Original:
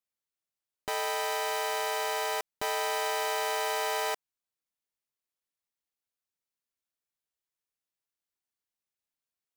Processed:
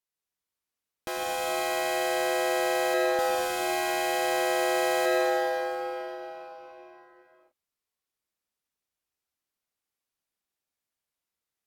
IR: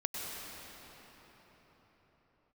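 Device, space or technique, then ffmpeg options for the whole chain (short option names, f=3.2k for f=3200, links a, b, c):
slowed and reverbed: -filter_complex "[0:a]asetrate=36162,aresample=44100[a];[1:a]atrim=start_sample=2205[b];[a][b]afir=irnorm=-1:irlink=0"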